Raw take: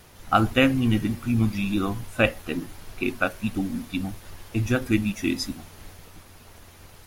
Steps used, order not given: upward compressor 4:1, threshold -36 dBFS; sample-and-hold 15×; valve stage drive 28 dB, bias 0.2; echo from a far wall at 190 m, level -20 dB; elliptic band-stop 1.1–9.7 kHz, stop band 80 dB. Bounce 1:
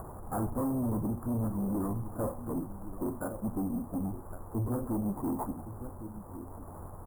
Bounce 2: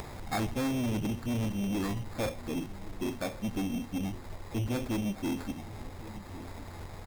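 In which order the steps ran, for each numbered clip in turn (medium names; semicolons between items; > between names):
echo from a far wall > sample-and-hold > upward compressor > valve stage > elliptic band-stop; elliptic band-stop > sample-and-hold > valve stage > echo from a far wall > upward compressor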